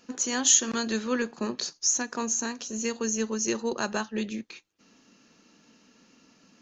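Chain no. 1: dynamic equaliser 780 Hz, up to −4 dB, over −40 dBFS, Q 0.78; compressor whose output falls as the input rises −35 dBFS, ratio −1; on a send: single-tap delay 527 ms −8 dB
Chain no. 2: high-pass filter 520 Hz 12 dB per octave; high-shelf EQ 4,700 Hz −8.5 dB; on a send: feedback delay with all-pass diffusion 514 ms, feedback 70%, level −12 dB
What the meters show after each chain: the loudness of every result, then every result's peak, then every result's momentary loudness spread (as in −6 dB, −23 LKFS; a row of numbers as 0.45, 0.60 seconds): −34.0, −32.0 LKFS; −14.5, −12.0 dBFS; 21, 22 LU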